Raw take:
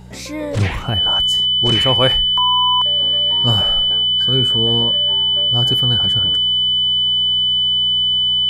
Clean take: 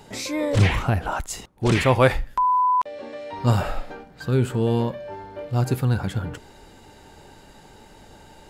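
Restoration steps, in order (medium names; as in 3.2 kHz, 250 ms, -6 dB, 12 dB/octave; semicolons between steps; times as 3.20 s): de-hum 61.3 Hz, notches 3; band-stop 3 kHz, Q 30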